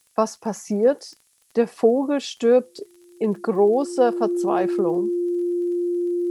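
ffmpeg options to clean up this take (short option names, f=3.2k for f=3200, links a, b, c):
-af "adeclick=t=4,bandreject=f=350:w=30,agate=range=-21dB:threshold=-49dB"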